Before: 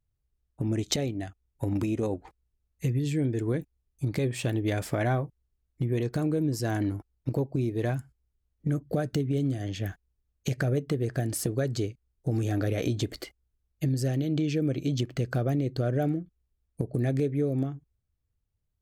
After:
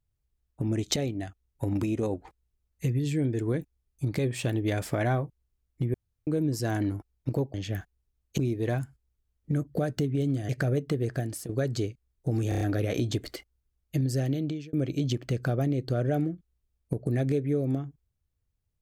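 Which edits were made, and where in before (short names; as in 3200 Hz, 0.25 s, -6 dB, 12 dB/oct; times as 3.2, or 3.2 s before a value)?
5.94–6.27 room tone
9.65–10.49 move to 7.54
11.12–11.49 fade out, to -12.5 dB
12.49 stutter 0.03 s, 5 plays
14.22–14.61 fade out linear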